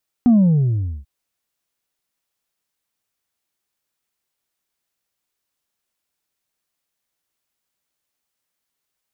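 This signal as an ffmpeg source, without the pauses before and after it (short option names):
-f lavfi -i "aevalsrc='0.355*clip((0.79-t)/0.78,0,1)*tanh(1.26*sin(2*PI*250*0.79/log(65/250)*(exp(log(65/250)*t/0.79)-1)))/tanh(1.26)':d=0.79:s=44100"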